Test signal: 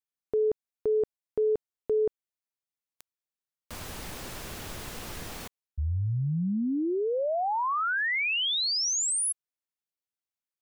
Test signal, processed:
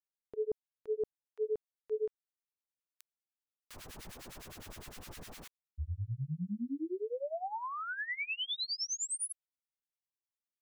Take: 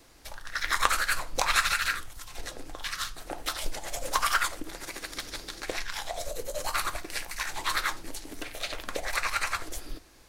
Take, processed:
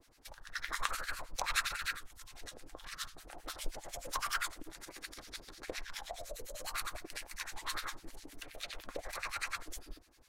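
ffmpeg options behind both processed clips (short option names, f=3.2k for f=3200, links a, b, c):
-filter_complex "[0:a]acrossover=split=1200[a][b];[a]aeval=exprs='val(0)*(1-1/2+1/2*cos(2*PI*9.8*n/s))':c=same[c];[b]aeval=exprs='val(0)*(1-1/2-1/2*cos(2*PI*9.8*n/s))':c=same[d];[c][d]amix=inputs=2:normalize=0,volume=-5.5dB"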